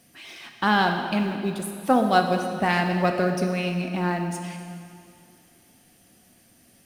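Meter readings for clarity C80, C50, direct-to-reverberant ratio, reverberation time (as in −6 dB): 6.5 dB, 5.5 dB, 4.0 dB, 2.4 s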